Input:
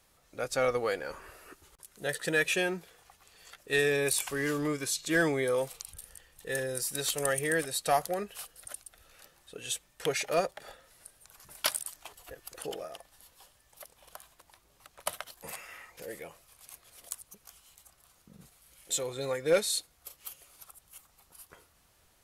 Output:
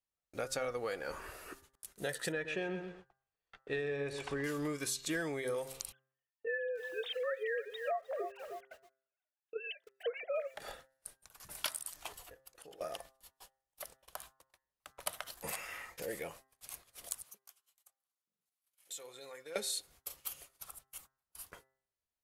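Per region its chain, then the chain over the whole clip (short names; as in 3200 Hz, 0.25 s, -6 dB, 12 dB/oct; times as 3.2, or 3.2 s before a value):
2.32–4.44 tape spacing loss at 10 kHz 27 dB + feedback echo 0.127 s, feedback 24%, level -11 dB
5.92–10.55 sine-wave speech + lo-fi delay 0.306 s, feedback 35%, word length 8-bit, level -15 dB
12.2–12.81 notches 50/100/150/200/250/300/350/400/450 Hz + compressor 16:1, threshold -51 dBFS
17.23–19.56 bell 12000 Hz +3.5 dB 0.2 oct + compressor 2.5:1, threshold -52 dBFS + HPF 760 Hz 6 dB/oct
whole clip: gate -55 dBFS, range -34 dB; compressor 6:1, threshold -37 dBFS; de-hum 132.6 Hz, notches 15; gain +2.5 dB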